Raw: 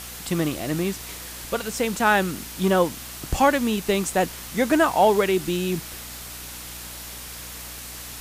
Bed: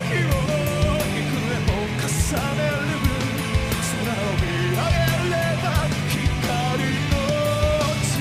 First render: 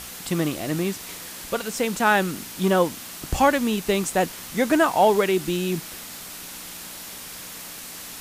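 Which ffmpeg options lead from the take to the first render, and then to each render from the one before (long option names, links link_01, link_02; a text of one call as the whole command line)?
ffmpeg -i in.wav -af "bandreject=frequency=60:width_type=h:width=4,bandreject=frequency=120:width_type=h:width=4" out.wav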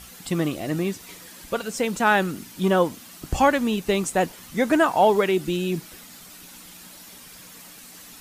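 ffmpeg -i in.wav -af "afftdn=noise_reduction=9:noise_floor=-38" out.wav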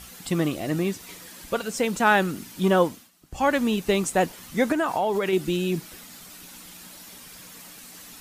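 ffmpeg -i in.wav -filter_complex "[0:a]asettb=1/sr,asplit=3[link_01][link_02][link_03];[link_01]atrim=end=4.724[link_04];[link_02]atrim=start=4.72:end=5.33,asetpts=PTS-STARTPTS,afade=type=in:duration=0.004:curve=qsin,afade=type=out:start_time=0.606:duration=0.004:curve=qsin,acompressor=threshold=-20dB:ratio=6:attack=3.2:release=140:knee=1:detection=peak[link_05];[link_03]atrim=start=5.326[link_06];[link_04][link_05]acrossfade=duration=0.004:curve1=hsin:curve2=qsin[link_07];[link_07][link_06]acrossfade=duration=0.004:curve1=qsin:curve2=hsin,asplit=3[link_08][link_09][link_10];[link_08]atrim=end=3.11,asetpts=PTS-STARTPTS,afade=type=out:start_time=2.85:duration=0.26:silence=0.125893[link_11];[link_09]atrim=start=3.11:end=3.31,asetpts=PTS-STARTPTS,volume=-18dB[link_12];[link_10]atrim=start=3.31,asetpts=PTS-STARTPTS,afade=type=in:duration=0.26:silence=0.125893[link_13];[link_11][link_12][link_13]concat=n=3:v=0:a=1" out.wav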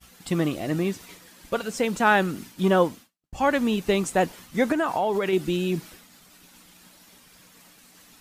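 ffmpeg -i in.wav -af "agate=range=-33dB:threshold=-38dB:ratio=3:detection=peak,highshelf=frequency=6100:gain=-5" out.wav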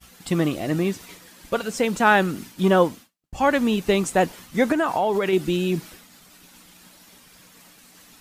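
ffmpeg -i in.wav -af "volume=2.5dB" out.wav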